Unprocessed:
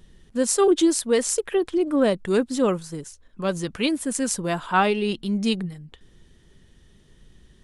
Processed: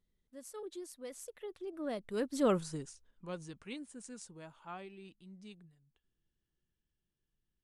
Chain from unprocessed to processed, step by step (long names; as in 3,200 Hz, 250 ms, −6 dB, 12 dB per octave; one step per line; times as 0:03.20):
source passing by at 0:02.61, 25 m/s, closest 4 metres
level −5 dB